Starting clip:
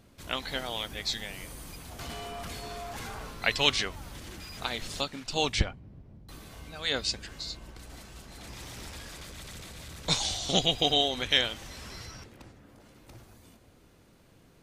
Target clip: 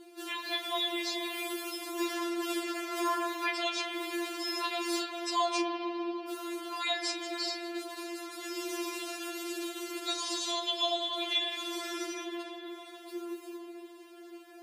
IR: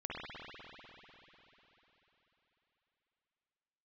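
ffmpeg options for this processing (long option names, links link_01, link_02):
-filter_complex "[0:a]bandreject=frequency=5800:width=23,bandreject=frequency=195.5:width_type=h:width=4,bandreject=frequency=391:width_type=h:width=4,asplit=2[link_01][link_02];[link_02]alimiter=limit=-15.5dB:level=0:latency=1:release=380,volume=-1.5dB[link_03];[link_01][link_03]amix=inputs=2:normalize=0,acompressor=threshold=-30dB:ratio=6,afreqshift=240,asplit=2[link_04][link_05];[1:a]atrim=start_sample=2205,adelay=32[link_06];[link_05][link_06]afir=irnorm=-1:irlink=0,volume=-4.5dB[link_07];[link_04][link_07]amix=inputs=2:normalize=0,afftfilt=real='re*4*eq(mod(b,16),0)':imag='im*4*eq(mod(b,16),0)':win_size=2048:overlap=0.75,volume=1.5dB"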